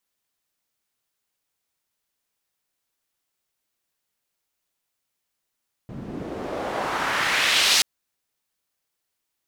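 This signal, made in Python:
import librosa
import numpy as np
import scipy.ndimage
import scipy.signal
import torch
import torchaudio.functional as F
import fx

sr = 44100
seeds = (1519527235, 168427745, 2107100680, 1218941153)

y = fx.riser_noise(sr, seeds[0], length_s=1.93, colour='pink', kind='bandpass', start_hz=170.0, end_hz=4800.0, q=1.3, swell_db=19.5, law='exponential')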